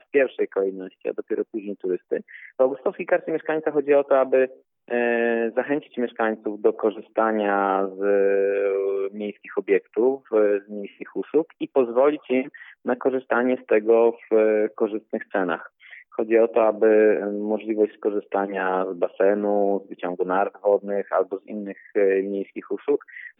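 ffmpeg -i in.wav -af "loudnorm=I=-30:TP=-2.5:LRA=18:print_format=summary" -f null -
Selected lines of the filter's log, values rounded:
Input Integrated:    -23.2 LUFS
Input True Peak:      -6.2 dBTP
Input LRA:             3.6 LU
Input Threshold:     -33.5 LUFS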